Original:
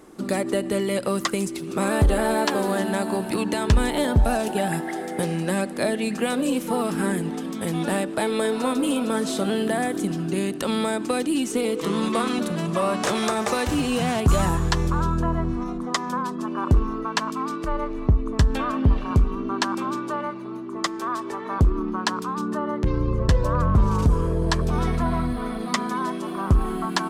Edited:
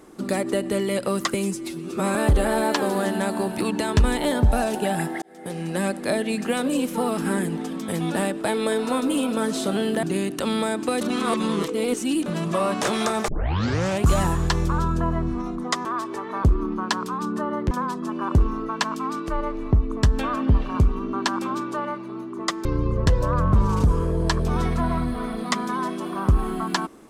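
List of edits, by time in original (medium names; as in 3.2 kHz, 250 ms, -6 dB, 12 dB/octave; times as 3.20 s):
1.34–1.88 s: stretch 1.5×
4.95–5.58 s: fade in
9.76–10.25 s: delete
11.23–12.48 s: reverse
13.50 s: tape start 0.77 s
21.01–22.87 s: move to 16.07 s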